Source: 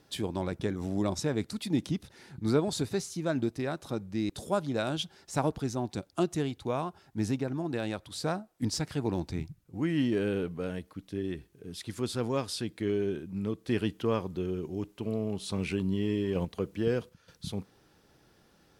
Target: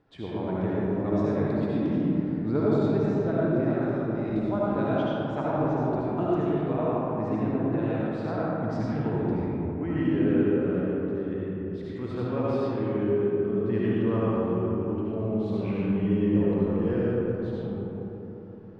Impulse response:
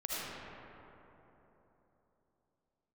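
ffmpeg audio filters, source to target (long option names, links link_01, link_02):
-filter_complex "[0:a]lowpass=1800[link_01];[1:a]atrim=start_sample=2205[link_02];[link_01][link_02]afir=irnorm=-1:irlink=0"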